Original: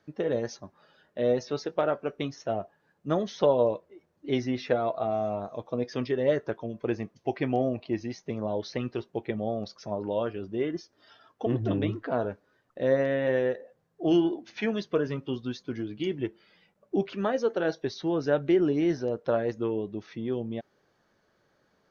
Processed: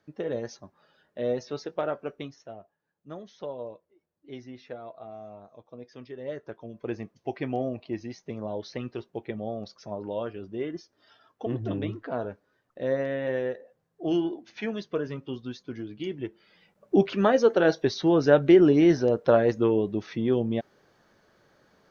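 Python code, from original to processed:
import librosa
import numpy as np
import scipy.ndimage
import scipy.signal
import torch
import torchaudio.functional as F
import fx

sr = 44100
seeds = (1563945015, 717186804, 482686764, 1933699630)

y = fx.gain(x, sr, db=fx.line((2.11, -3.0), (2.56, -14.0), (6.03, -14.0), (6.95, -3.0), (16.24, -3.0), (16.95, 6.5)))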